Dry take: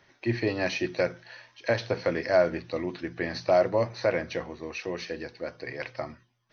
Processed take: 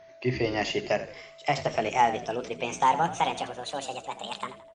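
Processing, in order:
gliding playback speed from 103% → 172%
steady tone 660 Hz −49 dBFS
echo with shifted repeats 83 ms, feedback 41%, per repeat −51 Hz, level −13.5 dB

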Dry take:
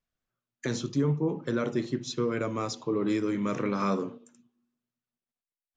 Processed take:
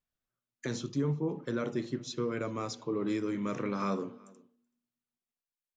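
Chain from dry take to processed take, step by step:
slap from a distant wall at 65 metres, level −25 dB
level −4.5 dB

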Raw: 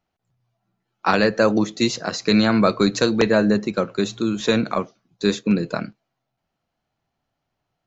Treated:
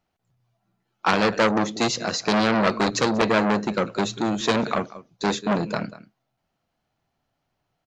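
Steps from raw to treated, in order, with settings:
on a send: single-tap delay 189 ms −19.5 dB
on the sum: saturating transformer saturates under 1,900 Hz
level +1.5 dB

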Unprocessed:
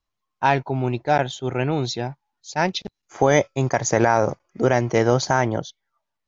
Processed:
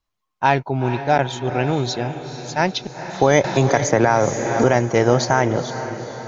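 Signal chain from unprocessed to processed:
feedback delay with all-pass diffusion 459 ms, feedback 54%, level −11 dB
0:03.44–0:04.64: multiband upward and downward compressor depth 70%
level +2 dB

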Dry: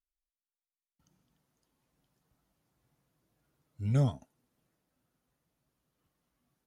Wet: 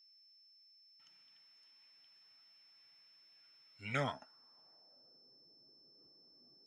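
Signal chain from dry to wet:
band-pass filter sweep 2,400 Hz → 390 Hz, 0:03.82–0:05.31
steady tone 5,300 Hz −78 dBFS
level +15 dB

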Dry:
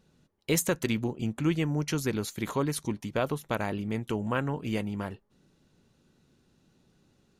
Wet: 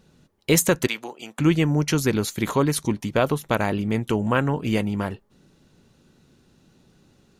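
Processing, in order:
0:00.87–0:01.39: high-pass filter 720 Hz 12 dB per octave
level +8 dB

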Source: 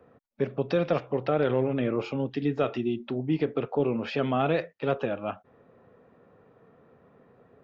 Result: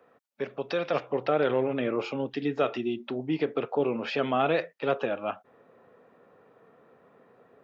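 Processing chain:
high-pass filter 840 Hz 6 dB per octave, from 0:00.94 390 Hz
level +2.5 dB

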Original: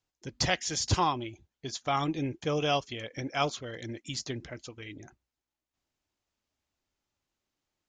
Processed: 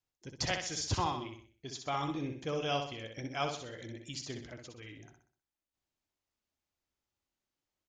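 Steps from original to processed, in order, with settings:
repeating echo 63 ms, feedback 42%, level −6 dB
level −6.5 dB

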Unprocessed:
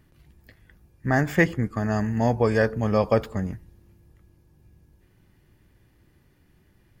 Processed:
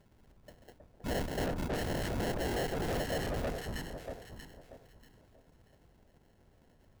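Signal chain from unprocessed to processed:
tilt shelving filter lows −6 dB, about 1,200 Hz
linear-prediction vocoder at 8 kHz whisper
sample-rate reduction 1,200 Hz, jitter 0%
delay that swaps between a low-pass and a high-pass 318 ms, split 1,300 Hz, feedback 51%, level −4 dB
tube saturation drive 31 dB, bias 0.3

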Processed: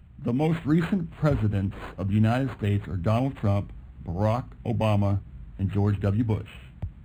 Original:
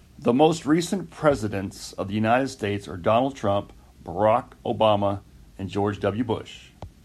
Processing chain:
drawn EQ curve 140 Hz 0 dB, 340 Hz −13 dB, 780 Hz −17 dB, 4,800 Hz −7 dB
automatic gain control gain up to 5 dB
linearly interpolated sample-rate reduction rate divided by 8×
level +3 dB

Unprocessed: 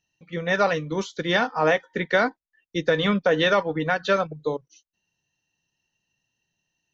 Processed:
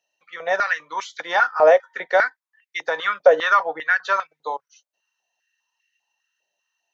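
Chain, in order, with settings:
dynamic equaliser 3,100 Hz, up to −6 dB, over −40 dBFS, Q 1.3
high-pass on a step sequencer 5 Hz 590–2,000 Hz

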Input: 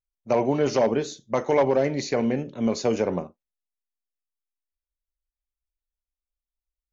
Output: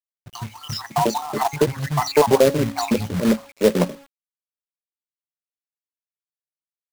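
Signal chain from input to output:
time-frequency cells dropped at random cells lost 69%
notch filter 3,500 Hz, Q 9.7
hum removal 278 Hz, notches 7
dynamic equaliser 210 Hz, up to +4 dB, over −44 dBFS, Q 4
in parallel at −1.5 dB: downward compressor 12 to 1, threshold −30 dBFS, peak gain reduction 13.5 dB
on the sum: three-band delay without the direct sound lows, highs, mids 30/640 ms, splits 160/1,500 Hz
on a send at −20.5 dB: convolution reverb RT60 0.20 s, pre-delay 3 ms
on the sum: log-companded quantiser 4 bits
level +6.5 dB

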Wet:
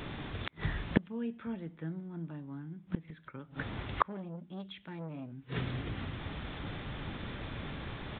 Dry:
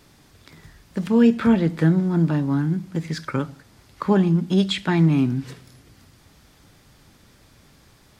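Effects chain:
gate with flip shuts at −26 dBFS, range −35 dB
downsampling to 8,000 Hz
0:04.07–0:05.32: saturating transformer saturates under 510 Hz
level +13 dB

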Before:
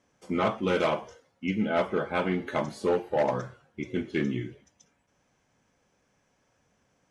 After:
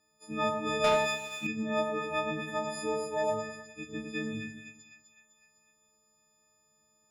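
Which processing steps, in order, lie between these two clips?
every partial snapped to a pitch grid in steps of 6 semitones
echo with a time of its own for lows and highs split 1,800 Hz, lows 104 ms, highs 253 ms, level −5 dB
0:00.84–0:01.47: leveller curve on the samples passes 2
level −9 dB

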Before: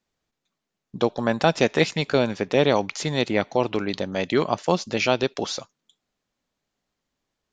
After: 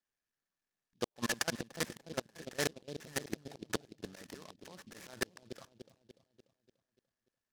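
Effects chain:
transistor ladder low-pass 1,800 Hz, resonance 85%
volume swells 271 ms
gate with flip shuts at −27 dBFS, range −38 dB
output level in coarse steps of 21 dB
delay with a low-pass on its return 293 ms, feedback 50%, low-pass 520 Hz, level −6.5 dB
short delay modulated by noise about 3,700 Hz, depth 0.097 ms
level +10.5 dB

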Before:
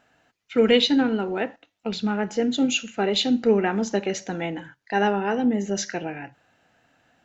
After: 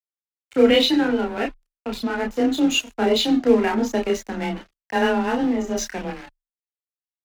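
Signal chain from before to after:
dynamic equaliser 130 Hz, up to +7 dB, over −42 dBFS, Q 1.9
dead-zone distortion −35.5 dBFS
frequency shifter +21 Hz
multi-voice chorus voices 6, 0.3 Hz, delay 30 ms, depth 2.6 ms
level +6 dB

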